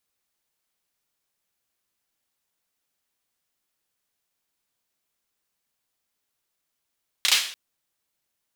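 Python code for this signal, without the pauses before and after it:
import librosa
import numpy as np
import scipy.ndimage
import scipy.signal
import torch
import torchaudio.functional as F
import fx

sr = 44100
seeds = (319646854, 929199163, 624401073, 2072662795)

y = fx.drum_clap(sr, seeds[0], length_s=0.29, bursts=3, spacing_ms=33, hz=3300.0, decay_s=0.49)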